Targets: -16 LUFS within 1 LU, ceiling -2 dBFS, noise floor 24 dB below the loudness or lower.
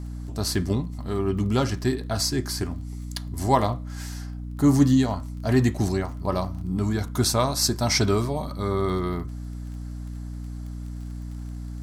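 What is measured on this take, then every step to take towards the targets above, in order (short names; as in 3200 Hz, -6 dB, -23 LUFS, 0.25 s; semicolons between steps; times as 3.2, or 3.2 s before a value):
ticks 24/s; hum 60 Hz; harmonics up to 300 Hz; hum level -31 dBFS; loudness -25.0 LUFS; peak -6.0 dBFS; loudness target -16.0 LUFS
-> de-click; notches 60/120/180/240/300 Hz; gain +9 dB; limiter -2 dBFS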